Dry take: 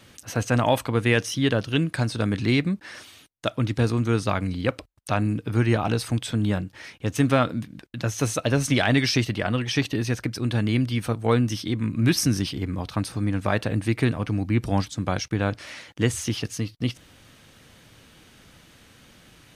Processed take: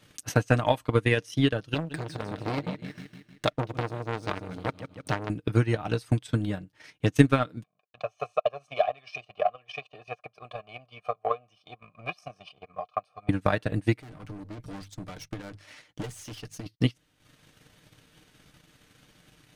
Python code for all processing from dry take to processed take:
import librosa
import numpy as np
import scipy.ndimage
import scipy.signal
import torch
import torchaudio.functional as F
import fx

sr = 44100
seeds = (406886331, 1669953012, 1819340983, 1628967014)

y = fx.chain(x, sr, fx.backlash(play_db=-41.5),
    fx.echo_feedback(ms=155, feedback_pct=54, wet_db=-9.0),
    fx.transformer_sat(knee_hz=1300.0), at=(1.74, 5.3))
y = fx.chain(y, sr, fx.leveller(passes=1),
    fx.vowel_filter(vowel='a'),
    fx.comb(ms=1.7, depth=0.82), at=(7.63, 13.29))
y = fx.chain(y, sr, fx.hum_notches(base_hz=50, count=3),
    fx.tube_stage(drive_db=30.0, bias=0.5),
    fx.overload_stage(gain_db=32.5), at=(14.0, 16.66))
y = y + 0.41 * np.pad(y, (int(6.6 * sr / 1000.0), 0))[:len(y)]
y = fx.transient(y, sr, attack_db=12, sustain_db=-10)
y = F.gain(torch.from_numpy(y), -8.0).numpy()